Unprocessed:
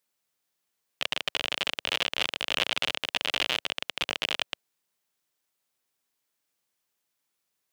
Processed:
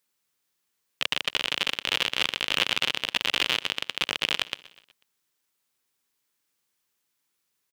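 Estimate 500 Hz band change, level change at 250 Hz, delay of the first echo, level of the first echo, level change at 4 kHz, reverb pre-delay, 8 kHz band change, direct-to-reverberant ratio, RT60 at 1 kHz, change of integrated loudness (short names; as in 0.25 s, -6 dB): 0.0 dB, +3.0 dB, 0.123 s, -20.5 dB, +3.0 dB, none, +3.0 dB, none, none, +3.0 dB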